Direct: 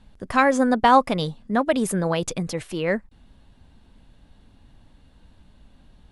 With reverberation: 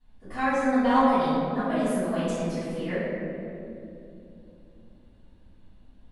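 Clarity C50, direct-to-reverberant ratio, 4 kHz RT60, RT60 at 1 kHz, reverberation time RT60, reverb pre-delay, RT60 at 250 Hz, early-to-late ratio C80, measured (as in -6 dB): -4.0 dB, -19.5 dB, 1.3 s, 2.3 s, 2.8 s, 3 ms, 4.2 s, -1.5 dB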